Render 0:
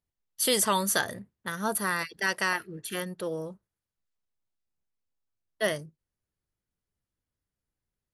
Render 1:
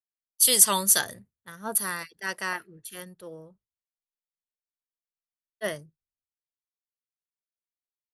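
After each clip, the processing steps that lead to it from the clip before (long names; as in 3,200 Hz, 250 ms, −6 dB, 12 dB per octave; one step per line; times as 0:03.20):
high-shelf EQ 5,100 Hz +9 dB
multiband upward and downward expander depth 100%
level −5 dB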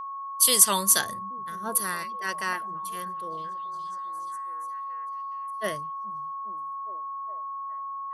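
steady tone 1,100 Hz −33 dBFS
echo through a band-pass that steps 414 ms, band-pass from 160 Hz, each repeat 0.7 octaves, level −10.5 dB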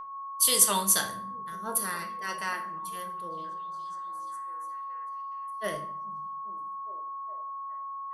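rectangular room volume 80 cubic metres, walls mixed, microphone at 0.44 metres
level −4 dB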